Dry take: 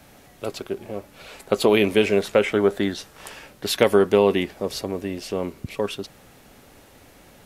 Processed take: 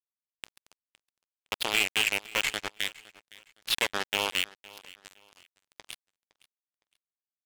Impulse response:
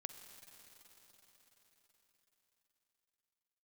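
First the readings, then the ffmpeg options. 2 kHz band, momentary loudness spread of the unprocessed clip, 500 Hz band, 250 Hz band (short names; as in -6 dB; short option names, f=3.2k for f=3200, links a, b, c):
-0.5 dB, 18 LU, -22.0 dB, -23.0 dB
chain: -filter_complex "[0:a]aeval=exprs='if(lt(val(0),0),0.251*val(0),val(0))':c=same,bandpass=f=2.8k:t=q:w=2.1:csg=0,asoftclip=type=tanh:threshold=-21.5dB,acrusher=bits=4:mix=0:aa=0.5,asplit=2[a][b];[b]aecho=0:1:512|1024:0.0891|0.0267[c];[a][c]amix=inputs=2:normalize=0,volume=8dB"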